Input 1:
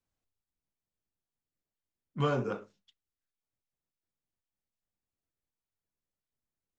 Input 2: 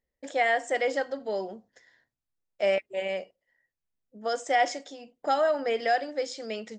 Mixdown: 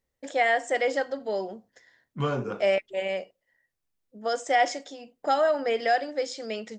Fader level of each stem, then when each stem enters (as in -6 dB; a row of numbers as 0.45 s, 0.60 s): +1.5 dB, +1.5 dB; 0.00 s, 0.00 s